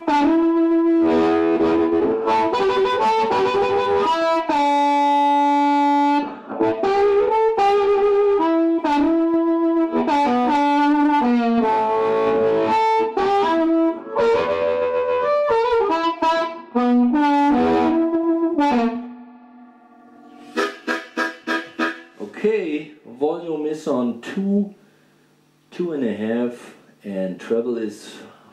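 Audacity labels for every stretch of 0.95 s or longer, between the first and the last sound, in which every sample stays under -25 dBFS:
19.010000	20.570000	silence
24.640000	25.800000	silence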